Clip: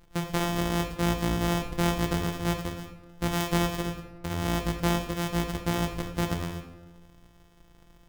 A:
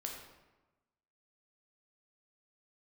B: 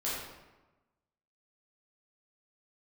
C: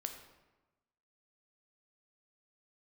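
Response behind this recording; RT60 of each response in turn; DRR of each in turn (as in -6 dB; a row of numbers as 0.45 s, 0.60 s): C; 1.1 s, 1.1 s, 1.1 s; 0.0 dB, -9.0 dB, 5.0 dB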